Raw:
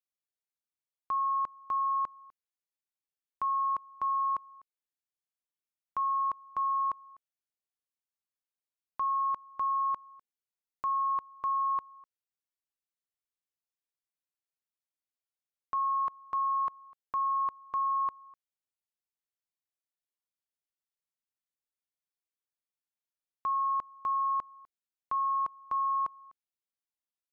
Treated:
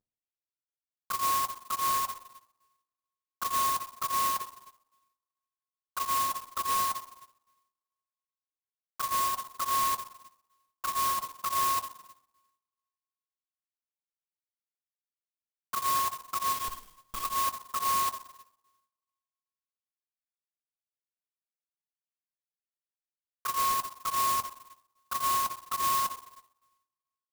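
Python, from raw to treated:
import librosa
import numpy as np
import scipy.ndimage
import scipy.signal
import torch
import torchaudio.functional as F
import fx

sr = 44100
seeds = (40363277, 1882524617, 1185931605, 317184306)

y = fx.cvsd(x, sr, bps=64000)
y = scipy.signal.sosfilt(scipy.signal.butter(2, 1600.0, 'lowpass', fs=sr, output='sos'), y)
y = fx.schmitt(y, sr, flips_db=-43.0, at=(16.52, 17.24))
y = fx.rev_double_slope(y, sr, seeds[0], early_s=0.75, late_s=1.9, knee_db=-27, drr_db=1.5)
y = fx.env_flanger(y, sr, rest_ms=9.8, full_db=-22.5)
y = fx.clock_jitter(y, sr, seeds[1], jitter_ms=0.077)
y = y * 10.0 ** (2.0 / 20.0)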